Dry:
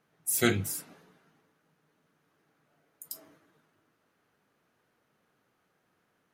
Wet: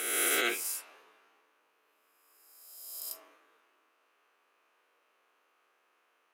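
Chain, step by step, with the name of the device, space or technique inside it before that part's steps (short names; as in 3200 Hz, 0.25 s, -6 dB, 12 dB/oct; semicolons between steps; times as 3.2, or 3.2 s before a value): spectral swells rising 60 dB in 1.54 s; laptop speaker (HPF 370 Hz 24 dB/oct; bell 1100 Hz +7 dB 0.45 oct; bell 2600 Hz +9 dB 0.53 oct; limiter -14.5 dBFS, peak gain reduction 6 dB); 0.54–0.94 HPF 550 Hz 6 dB/oct; gain -3.5 dB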